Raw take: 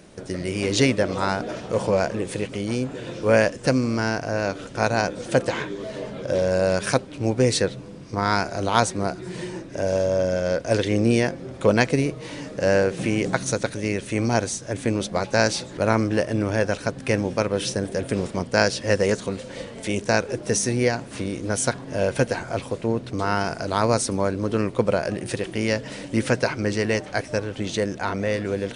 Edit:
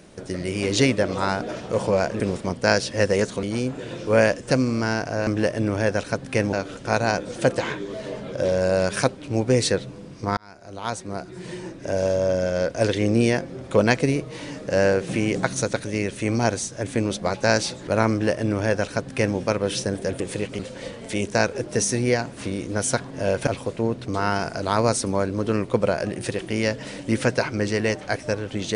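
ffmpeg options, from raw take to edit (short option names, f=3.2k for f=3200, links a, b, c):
-filter_complex "[0:a]asplit=9[a][b][c][d][e][f][g][h][i];[a]atrim=end=2.202[j];[b]atrim=start=18.098:end=19.332[k];[c]atrim=start=2.588:end=4.432[l];[d]atrim=start=16.008:end=17.272[m];[e]atrim=start=4.428:end=8.27,asetpts=PTS-STARTPTS,afade=t=out:st=3.838:d=0.004:c=hsin[n];[f]atrim=start=8.27:end=18.102,asetpts=PTS-STARTPTS,afade=t=in:d=1.54[o];[g]atrim=start=2.198:end=2.592[p];[h]atrim=start=19.328:end=22.212[q];[i]atrim=start=22.518[r];[j][k]acrossfade=d=0.004:c1=hsin:c2=hsin[s];[s][l]acrossfade=d=0.004:c1=hsin:c2=hsin[t];[t][m]acrossfade=d=0.004:c1=hsin:c2=hsin[u];[n][o]concat=n=2:v=0:a=1[v];[u][v]acrossfade=d=0.004:c1=hsin:c2=hsin[w];[w][p]acrossfade=d=0.004:c1=hsin:c2=hsin[x];[x][q]acrossfade=d=0.004:c1=hsin:c2=hsin[y];[y][r]acrossfade=d=0.004:c1=hsin:c2=hsin"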